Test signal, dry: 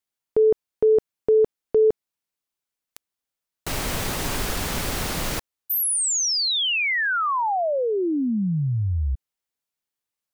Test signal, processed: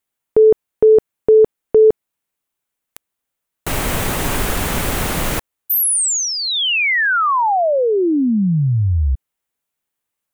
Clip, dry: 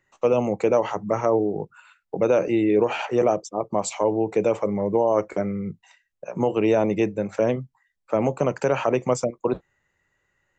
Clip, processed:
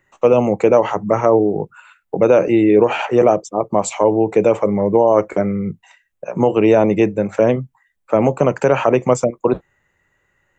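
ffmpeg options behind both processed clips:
-af "equalizer=f=4900:t=o:w=0.88:g=-7,volume=2.37"

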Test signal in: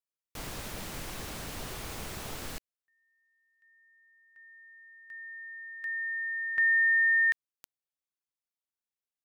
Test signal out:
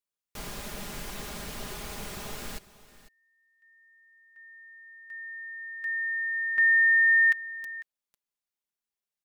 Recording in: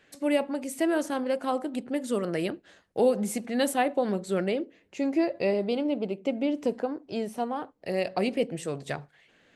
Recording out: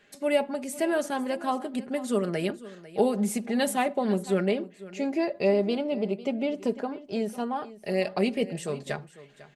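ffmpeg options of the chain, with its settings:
-af "aecho=1:1:4.9:0.52,aecho=1:1:499:0.133"

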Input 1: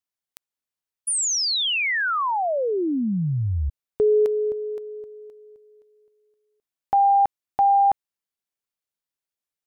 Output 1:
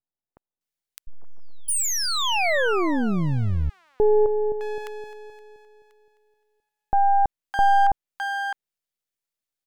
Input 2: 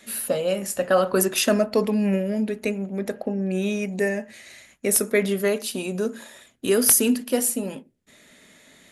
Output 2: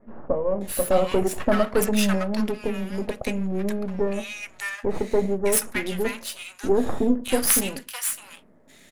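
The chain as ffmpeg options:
-filter_complex "[0:a]aeval=exprs='if(lt(val(0),0),0.251*val(0),val(0))':c=same,acrossover=split=1100[s0][s1];[s1]adelay=610[s2];[s0][s2]amix=inputs=2:normalize=0,adynamicequalizer=threshold=0.00631:dfrequency=3100:dqfactor=0.7:tfrequency=3100:tqfactor=0.7:attack=5:release=100:ratio=0.375:range=3.5:mode=cutabove:tftype=highshelf,volume=1.58"

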